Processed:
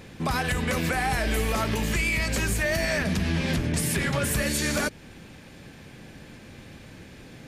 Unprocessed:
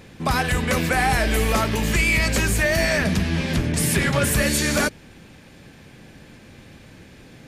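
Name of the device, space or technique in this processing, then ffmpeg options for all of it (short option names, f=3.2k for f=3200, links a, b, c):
stacked limiters: -af "alimiter=limit=-13.5dB:level=0:latency=1:release=261,alimiter=limit=-16.5dB:level=0:latency=1:release=98"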